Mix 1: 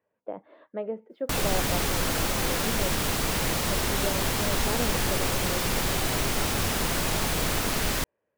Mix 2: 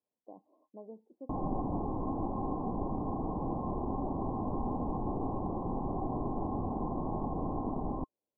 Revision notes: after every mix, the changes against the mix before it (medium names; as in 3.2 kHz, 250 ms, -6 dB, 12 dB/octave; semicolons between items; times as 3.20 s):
speech -9.0 dB; master: add rippled Chebyshev low-pass 1.1 kHz, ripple 9 dB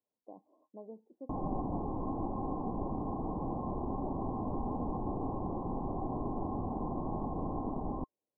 reverb: off